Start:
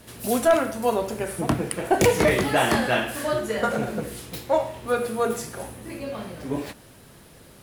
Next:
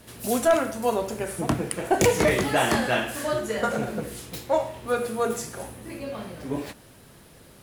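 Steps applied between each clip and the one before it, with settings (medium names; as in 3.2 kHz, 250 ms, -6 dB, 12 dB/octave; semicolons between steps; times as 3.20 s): dynamic bell 6.9 kHz, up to +4 dB, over -48 dBFS, Q 2; trim -1.5 dB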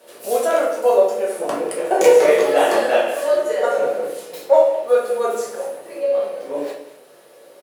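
resonant high-pass 510 Hz, resonance Q 4.4; delay 197 ms -16 dB; simulated room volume 98 m³, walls mixed, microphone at 1.1 m; trim -3.5 dB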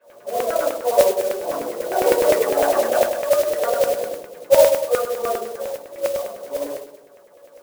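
simulated room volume 310 m³, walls furnished, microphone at 5.2 m; LFO low-pass saw down 9.9 Hz 460–2400 Hz; modulation noise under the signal 14 dB; trim -16 dB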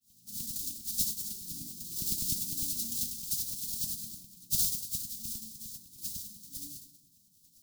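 inverse Chebyshev band-stop 430–2000 Hz, stop band 50 dB; trim -1.5 dB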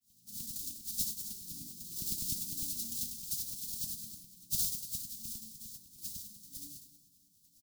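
feedback delay 297 ms, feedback 45%, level -20 dB; trim -4 dB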